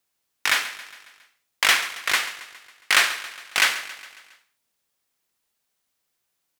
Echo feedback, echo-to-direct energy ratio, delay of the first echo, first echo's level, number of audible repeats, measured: 56%, −13.5 dB, 137 ms, −15.0 dB, 4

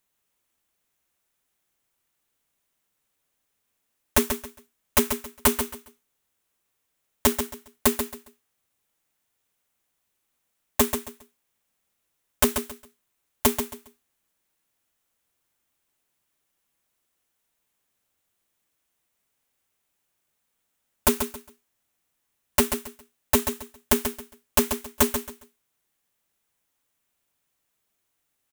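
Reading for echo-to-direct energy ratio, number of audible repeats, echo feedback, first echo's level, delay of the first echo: −7.5 dB, 3, 24%, −8.0 dB, 136 ms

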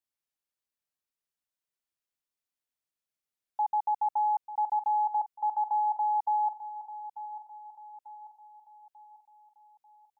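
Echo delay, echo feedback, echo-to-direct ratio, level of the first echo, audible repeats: 892 ms, 46%, −12.0 dB, −13.0 dB, 4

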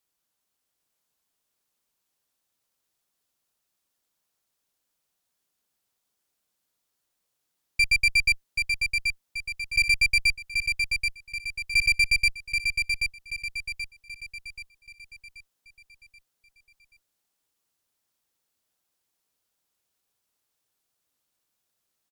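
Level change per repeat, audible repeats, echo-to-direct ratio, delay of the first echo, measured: −7.0 dB, 5, −4.0 dB, 781 ms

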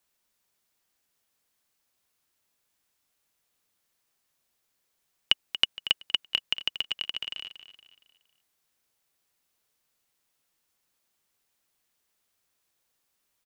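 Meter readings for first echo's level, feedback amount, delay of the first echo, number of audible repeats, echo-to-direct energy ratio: −12.5 dB, 40%, 233 ms, 3, −12.0 dB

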